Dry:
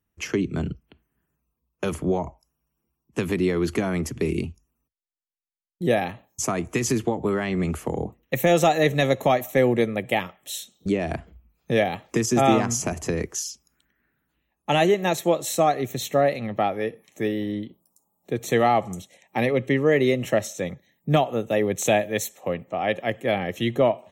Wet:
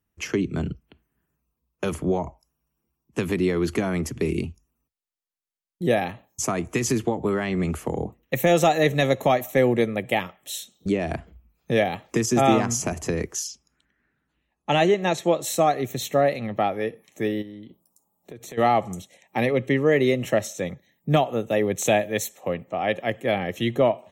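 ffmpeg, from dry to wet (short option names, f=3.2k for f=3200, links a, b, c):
-filter_complex "[0:a]asettb=1/sr,asplit=3[a][b][c];[a]atrim=end=13.474[d];[b]atrim=start=13.47:end=15.42,asetpts=PTS-STARTPTS,afade=t=in:d=0.004:c=qsin,afade=t=out:st=1.946:d=0.004:c=qsin,lowpass=7.3k[e];[c]atrim=start=15.416[f];[d][e]acrossfade=d=0.004:c1=hsin:c2=qsin[g];[g][f]acrossfade=d=0.004:c1=qsin:c2=hsin,asplit=3[h][i][j];[h]afade=t=out:st=17.41:d=0.02[k];[i]acompressor=threshold=-37dB:ratio=6:attack=3.2:release=140:knee=1:detection=peak,afade=t=in:st=17.41:d=0.02,afade=t=out:st=18.57:d=0.02[l];[j]afade=t=in:st=18.57:d=0.02[m];[k][l][m]amix=inputs=3:normalize=0"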